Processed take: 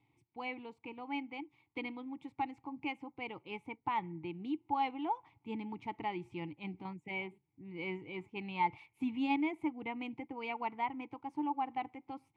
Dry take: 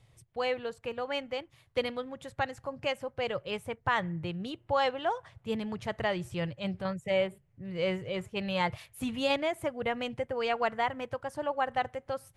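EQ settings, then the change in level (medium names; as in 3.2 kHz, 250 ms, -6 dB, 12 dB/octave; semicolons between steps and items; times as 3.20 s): vowel filter u; +7.5 dB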